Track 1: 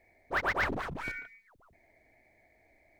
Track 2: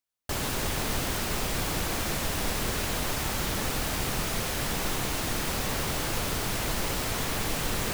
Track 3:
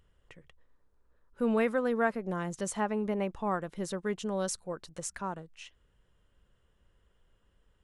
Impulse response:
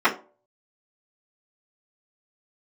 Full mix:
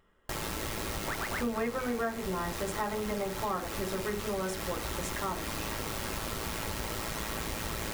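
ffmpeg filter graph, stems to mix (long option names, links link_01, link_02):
-filter_complex "[0:a]adelay=750,volume=-3.5dB[link_01];[1:a]aeval=exprs='val(0)*sin(2*PI*55*n/s)':channel_layout=same,volume=-2dB,asplit=2[link_02][link_03];[link_03]volume=-23dB[link_04];[2:a]volume=-3dB,asplit=2[link_05][link_06];[link_06]volume=-10dB[link_07];[3:a]atrim=start_sample=2205[link_08];[link_04][link_07]amix=inputs=2:normalize=0[link_09];[link_09][link_08]afir=irnorm=-1:irlink=0[link_10];[link_01][link_02][link_05][link_10]amix=inputs=4:normalize=0,acompressor=threshold=-31dB:ratio=4"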